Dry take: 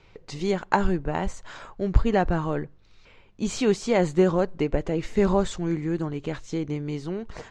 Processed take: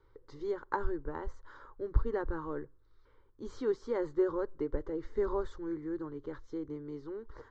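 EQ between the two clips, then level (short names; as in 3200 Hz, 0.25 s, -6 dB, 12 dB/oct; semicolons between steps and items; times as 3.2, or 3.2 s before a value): air absorption 180 m; high shelf 4500 Hz -5.5 dB; fixed phaser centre 690 Hz, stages 6; -7.5 dB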